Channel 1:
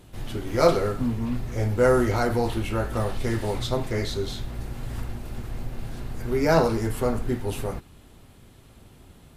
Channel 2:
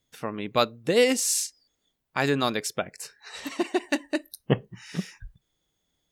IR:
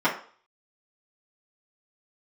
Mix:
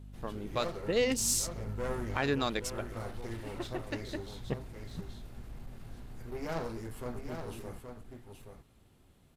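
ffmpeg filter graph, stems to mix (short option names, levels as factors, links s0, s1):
-filter_complex "[0:a]aeval=exprs='clip(val(0),-1,0.0473)':c=same,volume=0.2,asplit=2[s0][s1];[s1]volume=0.447[s2];[1:a]afwtdn=0.0126,aeval=exprs='val(0)+0.0112*(sin(2*PI*50*n/s)+sin(2*PI*2*50*n/s)/2+sin(2*PI*3*50*n/s)/3+sin(2*PI*4*50*n/s)/4+sin(2*PI*5*50*n/s)/5)':c=same,volume=0.891,afade=t=in:st=0.87:d=0.52:silence=0.446684,afade=t=out:st=2.56:d=0.26:silence=0.251189[s3];[s2]aecho=0:1:824:1[s4];[s0][s3][s4]amix=inputs=3:normalize=0,aeval=exprs='0.266*(cos(1*acos(clip(val(0)/0.266,-1,1)))-cos(1*PI/2))+0.00668*(cos(6*acos(clip(val(0)/0.266,-1,1)))-cos(6*PI/2))':c=same,alimiter=limit=0.119:level=0:latency=1:release=462"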